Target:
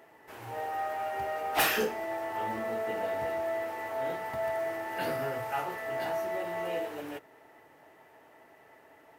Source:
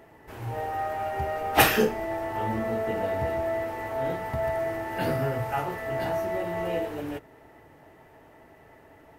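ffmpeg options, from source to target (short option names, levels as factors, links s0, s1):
-filter_complex "[0:a]asplit=2[s0][s1];[s1]acrusher=bits=5:mode=log:mix=0:aa=0.000001,volume=0.282[s2];[s0][s2]amix=inputs=2:normalize=0,highpass=f=520:p=1,asoftclip=type=tanh:threshold=0.141,volume=0.668"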